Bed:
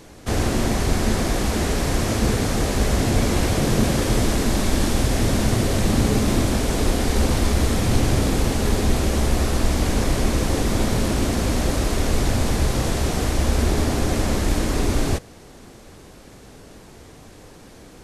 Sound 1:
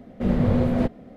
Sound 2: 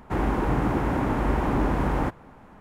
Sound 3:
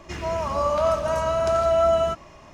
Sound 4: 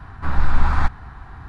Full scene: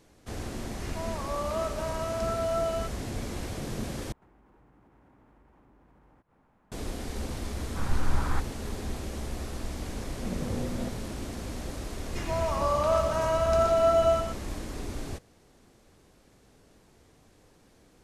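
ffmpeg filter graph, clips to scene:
ffmpeg -i bed.wav -i cue0.wav -i cue1.wav -i cue2.wav -i cue3.wav -filter_complex "[3:a]asplit=2[link_01][link_02];[0:a]volume=-15.5dB[link_03];[2:a]acompressor=threshold=-42dB:ratio=6:attack=3.2:release=140:knee=1:detection=peak[link_04];[link_02]aecho=1:1:123:0.447[link_05];[link_03]asplit=2[link_06][link_07];[link_06]atrim=end=4.124[link_08];[link_04]atrim=end=2.6,asetpts=PTS-STARTPTS,volume=-17dB[link_09];[link_07]atrim=start=6.716[link_10];[link_01]atrim=end=2.53,asetpts=PTS-STARTPTS,volume=-10dB,afade=type=in:duration=0.004:curve=hsin,afade=type=out:start_time=2.526:duration=0.004:curve=hsin,adelay=730[link_11];[4:a]atrim=end=1.48,asetpts=PTS-STARTPTS,volume=-10.5dB,afade=type=in:duration=0.004:curve=hsin,afade=type=out:start_time=1.476:duration=0.004:curve=hsin,adelay=7530[link_12];[1:a]atrim=end=1.16,asetpts=PTS-STARTPTS,volume=-13dB,afade=type=in:duration=0.004:curve=hsin,afade=type=out:start_time=1.156:duration=0.004:curve=hsin,adelay=441882S[link_13];[link_05]atrim=end=2.53,asetpts=PTS-STARTPTS,volume=-4dB,afade=type=in:duration=0.004:curve=hsin,afade=type=out:start_time=2.526:duration=0.004:curve=hsin,adelay=12060[link_14];[link_08][link_09]acrossfade=duration=0.004:curve1=hsin:curve2=hsin[link_15];[link_15][link_10]acrossfade=duration=0.004:curve1=hsin:curve2=hsin[link_16];[link_16][link_11][link_12][link_13][link_14]amix=inputs=5:normalize=0" out.wav

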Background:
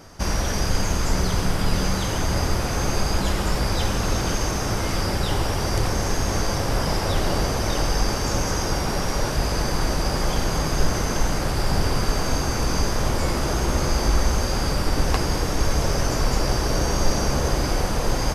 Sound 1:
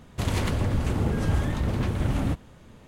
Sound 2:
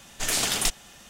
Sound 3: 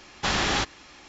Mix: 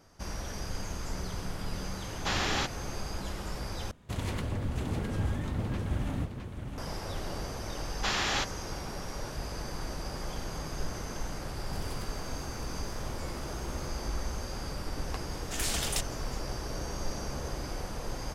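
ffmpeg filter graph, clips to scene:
ffmpeg -i bed.wav -i cue0.wav -i cue1.wav -i cue2.wav -filter_complex "[3:a]asplit=2[link_01][link_02];[1:a]asplit=2[link_03][link_04];[0:a]volume=-14.5dB[link_05];[link_03]aecho=1:1:661:0.473[link_06];[link_02]lowshelf=frequency=330:gain=-10.5[link_07];[link_04]aderivative[link_08];[link_05]asplit=2[link_09][link_10];[link_09]atrim=end=3.914[link_11];[link_06]atrim=end=2.87,asetpts=PTS-STARTPTS,volume=-8dB[link_12];[link_10]atrim=start=6.776[link_13];[link_01]atrim=end=1.08,asetpts=PTS-STARTPTS,volume=-6dB,afade=type=in:duration=0.004:curve=hsin,afade=type=out:start_time=1.076:duration=0.004:curve=hsin,adelay=2020[link_14];[link_07]atrim=end=1.08,asetpts=PTS-STARTPTS,volume=-4.5dB,afade=type=in:duration=0.004:curve=hsin,afade=type=out:start_time=1.076:duration=0.004:curve=hsin,adelay=7800[link_15];[link_08]atrim=end=2.87,asetpts=PTS-STARTPTS,volume=-11.5dB,afade=type=in:duration=0.004:curve=hsin,afade=type=out:start_time=2.866:duration=0.004:curve=hsin,adelay=508914S[link_16];[2:a]atrim=end=1.09,asetpts=PTS-STARTPTS,volume=-8dB,afade=type=in:duration=0.004:curve=hsin,afade=type=out:start_time=1.086:duration=0.004:curve=hsin,adelay=15310[link_17];[link_11][link_12]acrossfade=duration=0.004:curve1=hsin:curve2=hsin[link_18];[link_18][link_13]acrossfade=duration=0.004:curve1=hsin:curve2=hsin[link_19];[link_19][link_14][link_15][link_16][link_17]amix=inputs=5:normalize=0" out.wav

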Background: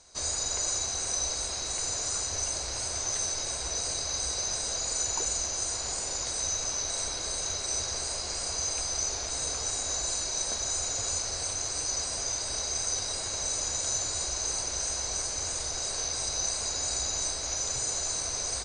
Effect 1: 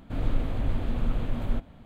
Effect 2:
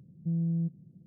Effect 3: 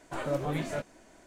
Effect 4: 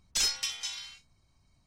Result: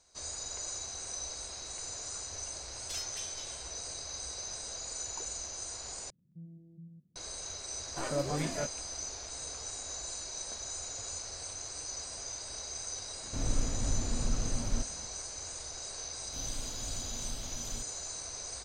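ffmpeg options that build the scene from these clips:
ffmpeg -i bed.wav -i cue0.wav -i cue1.wav -i cue2.wav -i cue3.wav -filter_complex "[1:a]asplit=2[link_01][link_02];[0:a]volume=-9.5dB[link_03];[2:a]aecho=1:1:93.29|218.7:0.447|0.447[link_04];[link_02]aexciter=amount=10.6:drive=4.8:freq=3000[link_05];[link_03]asplit=2[link_06][link_07];[link_06]atrim=end=6.104[link_08];[link_04]atrim=end=1.06,asetpts=PTS-STARTPTS,volume=-17.5dB[link_09];[link_07]atrim=start=7.156[link_10];[4:a]atrim=end=1.66,asetpts=PTS-STARTPTS,volume=-12.5dB,afade=type=in:duration=0.004:curve=hsin,afade=type=out:start_time=1.656:duration=0.004:curve=hsin,adelay=2740[link_11];[3:a]atrim=end=1.26,asetpts=PTS-STARTPTS,volume=-2dB,afade=type=in:duration=0.004:curve=hsin,afade=type=out:start_time=1.256:duration=0.004:curve=hsin,adelay=7850[link_12];[link_01]atrim=end=1.85,asetpts=PTS-STARTPTS,volume=-5dB,afade=type=in:duration=0.004:curve=hsin,afade=type=out:start_time=1.846:duration=0.004:curve=hsin,adelay=13230[link_13];[link_05]atrim=end=1.85,asetpts=PTS-STARTPTS,volume=-15.5dB,afade=type=in:duration=0.004:curve=hsin,afade=type=out:start_time=1.846:duration=0.004:curve=hsin,adelay=16230[link_14];[link_08][link_09]acrossfade=duration=0.004:curve1=hsin:curve2=hsin[link_15];[link_15][link_10]acrossfade=duration=0.004:curve1=hsin:curve2=hsin[link_16];[link_16][link_11][link_12][link_13][link_14]amix=inputs=5:normalize=0" out.wav

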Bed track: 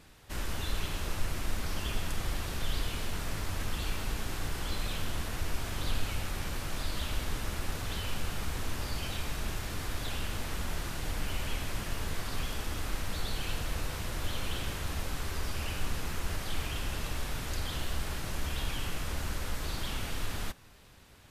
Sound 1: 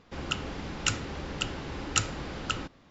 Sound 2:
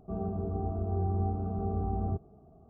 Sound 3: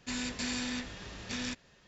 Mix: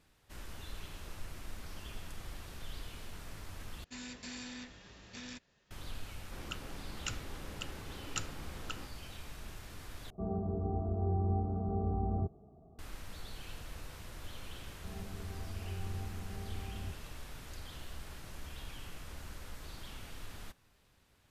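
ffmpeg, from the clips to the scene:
ffmpeg -i bed.wav -i cue0.wav -i cue1.wav -i cue2.wav -filter_complex "[2:a]asplit=2[link_01][link_02];[0:a]volume=-12dB[link_03];[link_01]lowpass=1400[link_04];[link_02]lowshelf=frequency=160:gain=8.5[link_05];[link_03]asplit=3[link_06][link_07][link_08];[link_06]atrim=end=3.844[link_09];[3:a]atrim=end=1.87,asetpts=PTS-STARTPTS,volume=-10dB[link_10];[link_07]atrim=start=5.706:end=10.104[link_11];[link_04]atrim=end=2.69,asetpts=PTS-STARTPTS,volume=-2dB[link_12];[link_08]atrim=start=12.786[link_13];[1:a]atrim=end=2.9,asetpts=PTS-STARTPTS,volume=-12dB,afade=type=in:duration=0.004:curve=hsin,afade=type=out:start_time=2.896:duration=0.004:curve=hsin,adelay=6200[link_14];[link_05]atrim=end=2.69,asetpts=PTS-STARTPTS,volume=-17dB,afade=type=in:duration=0.004:curve=hsin,afade=type=out:start_time=2.686:duration=0.004:curve=hsin,adelay=14750[link_15];[link_09][link_10]acrossfade=duration=0.004:curve1=hsin:curve2=hsin[link_16];[link_16][link_11]acrossfade=duration=0.004:curve1=hsin:curve2=hsin[link_17];[link_17][link_12]acrossfade=duration=0.004:curve1=hsin:curve2=hsin[link_18];[link_18][link_13]acrossfade=duration=0.004:curve1=hsin:curve2=hsin[link_19];[link_19][link_14][link_15]amix=inputs=3:normalize=0" out.wav

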